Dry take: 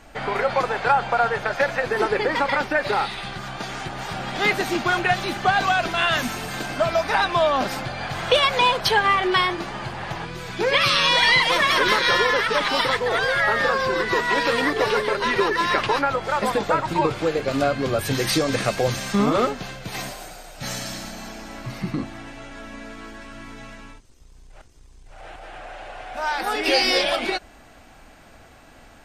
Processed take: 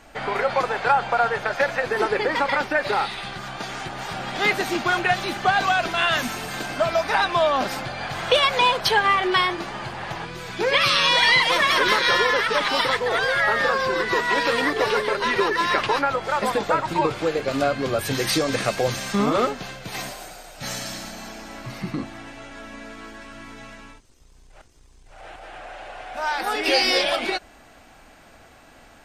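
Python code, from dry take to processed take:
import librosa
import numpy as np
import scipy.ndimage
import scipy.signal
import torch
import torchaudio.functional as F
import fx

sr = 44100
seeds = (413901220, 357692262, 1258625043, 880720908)

y = fx.low_shelf(x, sr, hz=200.0, db=-4.5)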